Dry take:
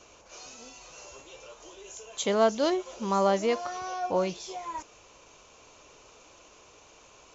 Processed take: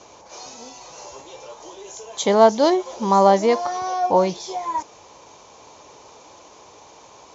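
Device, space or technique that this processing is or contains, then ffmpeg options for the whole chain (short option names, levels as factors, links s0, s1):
car door speaker: -af "highpass=86,equalizer=f=870:t=q:w=4:g=8,equalizer=f=1400:t=q:w=4:g=-6,equalizer=f=2700:t=q:w=4:g=-9,lowpass=f=6800:w=0.5412,lowpass=f=6800:w=1.3066,volume=2.66"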